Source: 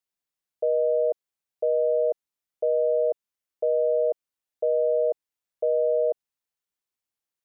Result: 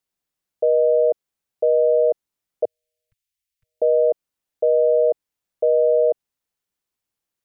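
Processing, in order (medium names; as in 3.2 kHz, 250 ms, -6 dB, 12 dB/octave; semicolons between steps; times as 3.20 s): 2.65–3.82 s: inverse Chebyshev band-stop 300–710 Hz, stop band 70 dB; bass shelf 440 Hz +5.5 dB; trim +4 dB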